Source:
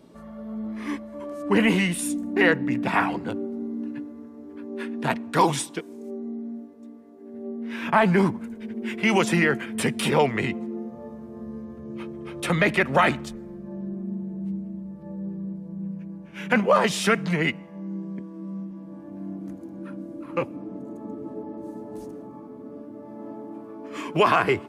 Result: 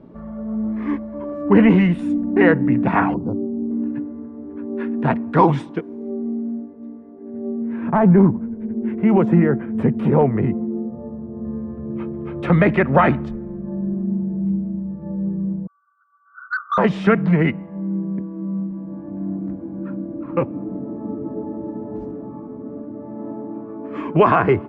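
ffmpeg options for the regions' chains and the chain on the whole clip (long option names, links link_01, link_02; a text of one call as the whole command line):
ffmpeg -i in.wav -filter_complex "[0:a]asettb=1/sr,asplit=3[link_01][link_02][link_03];[link_01]atrim=end=3.144[link_04];[link_02]atrim=start=3.14:end=3.71,asetpts=PTS-STARTPTS,afade=type=in:duration=0.004:curve=qsin,afade=type=out:start_time=0.566:duration=0.004:curve=qsin,asuperstop=centerf=2400:order=12:qfactor=0.76,equalizer=frequency=1500:width_type=o:width=2.5:gain=-8.5[link_05];[link_03]atrim=start=3.706[link_06];[link_04][link_05]acrossfade=duration=0.004:curve1=hsin:curve2=qsin[link_07];[link_07][link_06]acrossfade=duration=0.004:curve1=qsin:curve2=hsin,asettb=1/sr,asplit=3[link_08][link_09][link_10];[link_08]atrim=end=7.624[link_11];[link_09]atrim=start=7.62:end=11.45,asetpts=PTS-STARTPTS,afade=type=in:duration=0.004:curve=qsin,afade=type=out:start_time=3.826:duration=0.004:curve=qsin,equalizer=frequency=3900:width_type=o:width=2.9:gain=-14,asoftclip=type=hard:threshold=-13.5dB[link_12];[link_10]atrim=start=11.446[link_13];[link_11][link_12]acrossfade=duration=0.004:curve1=hsin:curve2=qsin[link_14];[link_14][link_13]acrossfade=duration=0.004:curve1=qsin:curve2=hsin,asettb=1/sr,asplit=3[link_15][link_16][link_17];[link_15]atrim=end=15.674[link_18];[link_16]atrim=start=15.67:end=16.78,asetpts=PTS-STARTPTS,afade=type=in:duration=0.004:curve=qsin,afade=type=out:start_time=1.106:duration=0.004:curve=qsin,asuperpass=centerf=1300:order=20:qfactor=3.1,acontrast=73,asoftclip=type=hard:threshold=-21dB[link_19];[link_17]atrim=start=16.776[link_20];[link_18][link_19]acrossfade=duration=0.004:curve1=hsin:curve2=qsin[link_21];[link_21][link_20]acrossfade=duration=0.004:curve1=qsin:curve2=hsin,lowpass=1600,lowshelf=frequency=240:gain=8,volume=4.5dB" out.wav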